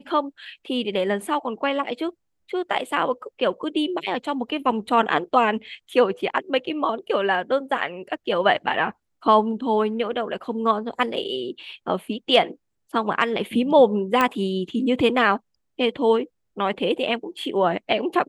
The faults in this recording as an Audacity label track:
14.210000	14.210000	pop -7 dBFS

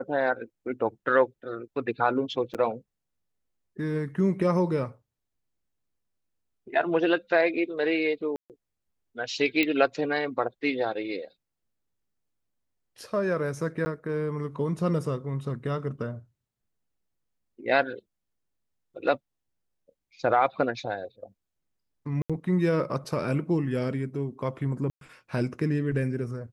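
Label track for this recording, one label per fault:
2.540000	2.550000	dropout 7.4 ms
8.360000	8.500000	dropout 138 ms
9.630000	9.630000	pop -12 dBFS
13.850000	13.860000	dropout 10 ms
22.220000	22.300000	dropout 76 ms
24.900000	25.010000	dropout 112 ms

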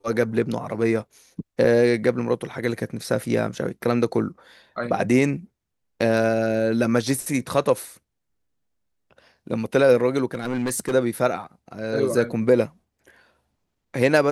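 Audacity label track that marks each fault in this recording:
10.340000	10.940000	clipped -20 dBFS

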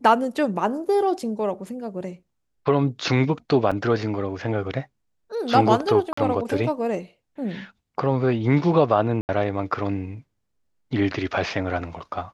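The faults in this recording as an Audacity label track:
3.710000	3.720000	dropout 5.6 ms
6.130000	6.170000	dropout 44 ms
9.210000	9.290000	dropout 79 ms

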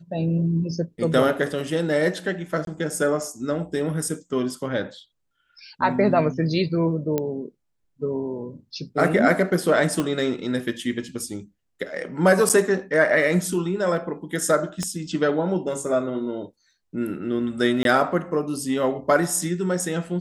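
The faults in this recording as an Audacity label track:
2.650000	2.670000	dropout 22 ms
7.180000	7.180000	pop -11 dBFS
10.000000	10.000000	pop -11 dBFS
12.490000	12.500000	dropout 7.5 ms
14.830000	14.830000	pop -14 dBFS
17.830000	17.850000	dropout 22 ms

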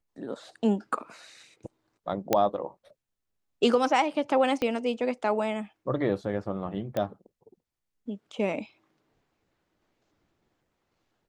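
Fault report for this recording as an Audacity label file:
2.330000	2.330000	pop -8 dBFS
4.620000	4.620000	pop -16 dBFS
6.970000	6.970000	pop -17 dBFS

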